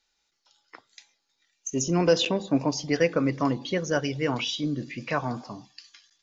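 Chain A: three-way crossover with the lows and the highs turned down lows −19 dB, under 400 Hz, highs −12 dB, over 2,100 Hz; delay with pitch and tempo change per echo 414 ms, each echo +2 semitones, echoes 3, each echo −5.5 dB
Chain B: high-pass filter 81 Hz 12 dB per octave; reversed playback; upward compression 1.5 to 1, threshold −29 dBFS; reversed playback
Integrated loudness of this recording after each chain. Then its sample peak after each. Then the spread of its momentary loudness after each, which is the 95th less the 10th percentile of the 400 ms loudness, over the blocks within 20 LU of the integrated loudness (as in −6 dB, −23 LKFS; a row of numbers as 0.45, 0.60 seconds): −30.5, −26.5 LKFS; −13.0, −8.5 dBFS; 13, 19 LU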